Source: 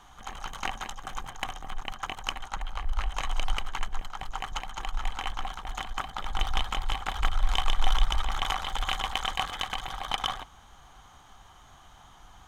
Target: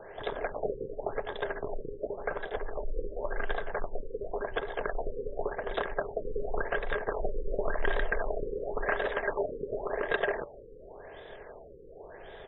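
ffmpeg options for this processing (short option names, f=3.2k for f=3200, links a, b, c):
-filter_complex "[0:a]lowshelf=f=230:g=-10,bandreject=f=362.8:t=h:w=4,bandreject=f=725.6:t=h:w=4,bandreject=f=1.0884k:t=h:w=4,bandreject=f=1.4512k:t=h:w=4,bandreject=f=1.814k:t=h:w=4,bandreject=f=2.1768k:t=h:w=4,bandreject=f=2.5396k:t=h:w=4,bandreject=f=2.9024k:t=h:w=4,bandreject=f=3.2652k:t=h:w=4,asplit=2[a][b];[b]acompressor=threshold=-38dB:ratio=10,volume=0dB[c];[a][c]amix=inputs=2:normalize=0,asoftclip=type=tanh:threshold=-23dB,asetrate=23361,aresample=44100,atempo=1.88775,afftfilt=real='re*lt(b*sr/1024,520*pow(4000/520,0.5+0.5*sin(2*PI*0.91*pts/sr)))':imag='im*lt(b*sr/1024,520*pow(4000/520,0.5+0.5*sin(2*PI*0.91*pts/sr)))':win_size=1024:overlap=0.75,volume=3.5dB"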